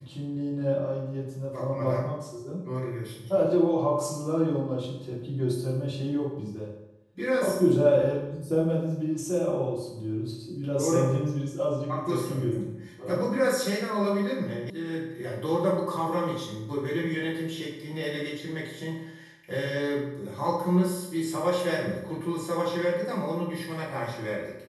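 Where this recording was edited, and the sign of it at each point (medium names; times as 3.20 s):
14.70 s: sound stops dead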